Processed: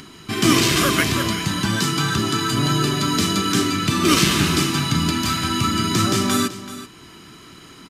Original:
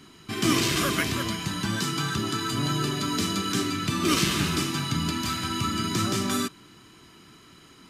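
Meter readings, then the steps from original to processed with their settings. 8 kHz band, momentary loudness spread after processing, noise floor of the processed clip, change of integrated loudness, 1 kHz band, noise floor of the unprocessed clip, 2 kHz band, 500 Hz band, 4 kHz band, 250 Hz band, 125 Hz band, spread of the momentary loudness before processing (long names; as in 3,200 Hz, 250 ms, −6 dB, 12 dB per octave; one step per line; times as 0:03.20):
+7.0 dB, 6 LU, −44 dBFS, +7.0 dB, +7.0 dB, −52 dBFS, +7.0 dB, +7.0 dB, +7.0 dB, +7.0 dB, +7.5 dB, 6 LU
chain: single-tap delay 381 ms −14.5 dB
upward compression, threshold −45 dBFS
level +7 dB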